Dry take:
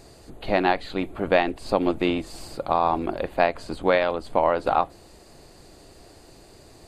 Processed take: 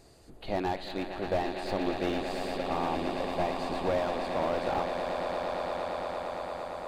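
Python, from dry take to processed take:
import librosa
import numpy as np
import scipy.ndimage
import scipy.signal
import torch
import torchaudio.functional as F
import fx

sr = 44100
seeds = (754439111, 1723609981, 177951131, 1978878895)

y = fx.echo_swell(x, sr, ms=114, loudest=8, wet_db=-13)
y = fx.dynamic_eq(y, sr, hz=3900.0, q=1.5, threshold_db=-45.0, ratio=4.0, max_db=6)
y = fx.slew_limit(y, sr, full_power_hz=120.0)
y = F.gain(torch.from_numpy(y), -8.5).numpy()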